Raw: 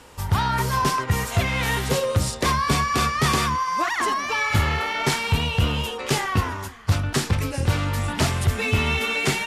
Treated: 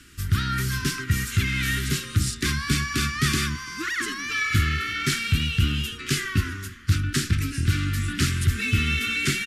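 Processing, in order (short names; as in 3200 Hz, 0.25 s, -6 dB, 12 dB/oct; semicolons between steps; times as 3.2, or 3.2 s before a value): Chebyshev band-stop 340–1400 Hz, order 3; on a send: echo 0.337 s -23.5 dB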